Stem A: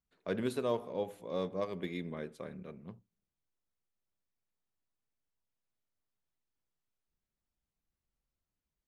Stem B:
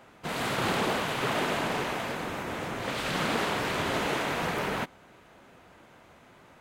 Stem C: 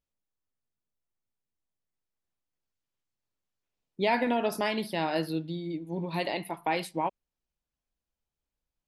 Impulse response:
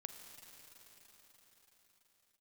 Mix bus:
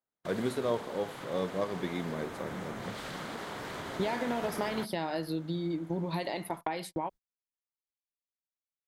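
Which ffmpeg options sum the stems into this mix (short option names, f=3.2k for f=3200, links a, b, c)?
-filter_complex "[0:a]volume=2dB[a];[1:a]acompressor=threshold=-34dB:ratio=6,volume=-7dB[b];[2:a]agate=range=-23dB:threshold=-40dB:ratio=16:detection=peak,acompressor=threshold=-37dB:ratio=10,volume=3dB[c];[a][b][c]amix=inputs=3:normalize=0,agate=range=-35dB:threshold=-48dB:ratio=16:detection=peak,equalizer=f=2.6k:w=3.9:g=-6.5,dynaudnorm=f=400:g=11:m=4.5dB"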